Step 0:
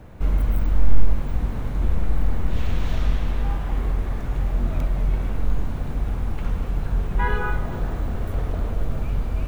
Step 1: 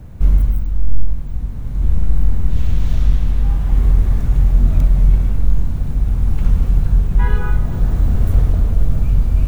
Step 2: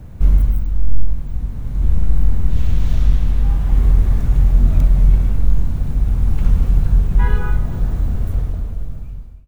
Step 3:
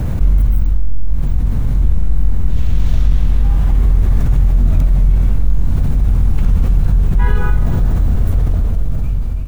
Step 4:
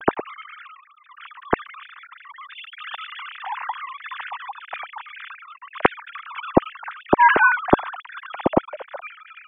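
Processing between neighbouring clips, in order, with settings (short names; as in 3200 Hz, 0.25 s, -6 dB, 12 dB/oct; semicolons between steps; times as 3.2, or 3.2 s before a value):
tone controls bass +12 dB, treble +8 dB; AGC; gain -1 dB
ending faded out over 2.24 s
fast leveller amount 70%; gain -4 dB
sine-wave speech; gain -15 dB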